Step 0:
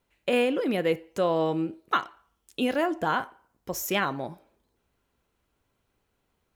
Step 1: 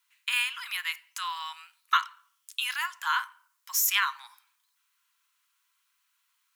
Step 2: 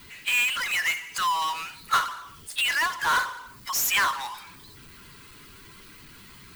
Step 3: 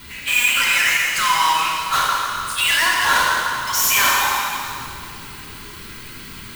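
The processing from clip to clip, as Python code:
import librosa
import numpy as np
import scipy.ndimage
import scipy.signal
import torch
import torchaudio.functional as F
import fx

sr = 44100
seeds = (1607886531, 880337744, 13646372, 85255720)

y1 = scipy.signal.sosfilt(scipy.signal.butter(12, 980.0, 'highpass', fs=sr, output='sos'), x)
y1 = fx.high_shelf(y1, sr, hz=2700.0, db=9.5)
y2 = fx.bin_expand(y1, sr, power=1.5)
y2 = fx.bass_treble(y2, sr, bass_db=9, treble_db=-13)
y2 = fx.power_curve(y2, sr, exponent=0.35)
y2 = y2 * librosa.db_to_amplitude(-2.5)
y3 = 10.0 ** (-25.5 / 20.0) * np.tanh(y2 / 10.0 ** (-25.5 / 20.0))
y3 = fx.rev_plate(y3, sr, seeds[0], rt60_s=2.5, hf_ratio=0.9, predelay_ms=0, drr_db=-4.0)
y3 = y3 * librosa.db_to_amplitude(7.0)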